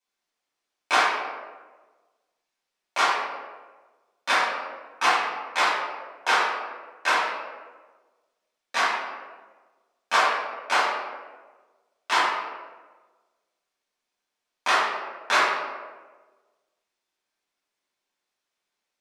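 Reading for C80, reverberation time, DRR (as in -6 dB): 3.0 dB, 1.4 s, -10.0 dB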